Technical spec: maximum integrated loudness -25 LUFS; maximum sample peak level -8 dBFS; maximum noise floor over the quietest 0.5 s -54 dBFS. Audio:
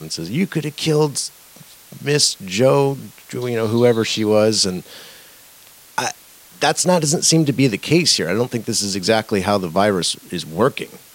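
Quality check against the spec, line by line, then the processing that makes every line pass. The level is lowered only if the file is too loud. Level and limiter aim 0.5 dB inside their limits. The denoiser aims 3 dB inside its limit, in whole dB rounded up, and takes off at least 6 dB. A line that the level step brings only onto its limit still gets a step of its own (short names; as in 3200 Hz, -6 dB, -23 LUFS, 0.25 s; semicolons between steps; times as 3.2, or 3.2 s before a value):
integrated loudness -18.0 LUFS: fail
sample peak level -2.5 dBFS: fail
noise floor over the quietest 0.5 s -46 dBFS: fail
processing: denoiser 6 dB, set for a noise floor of -46 dBFS; gain -7.5 dB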